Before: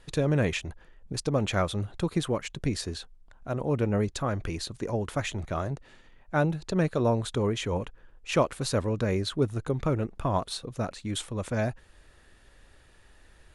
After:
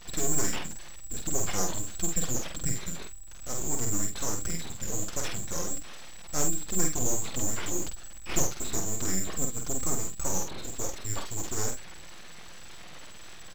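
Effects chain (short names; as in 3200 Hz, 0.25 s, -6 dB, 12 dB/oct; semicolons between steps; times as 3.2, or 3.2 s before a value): switching spikes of -27 dBFS; comb 5.7 ms, depth 83%; inverted band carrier 3900 Hz; in parallel at -1.5 dB: limiter -24.5 dBFS, peak gain reduction 17.5 dB; on the sum: full-wave rectifier; on a send: early reflections 48 ms -4.5 dB, 72 ms -17.5 dB; on the sum: gain -5.5 dB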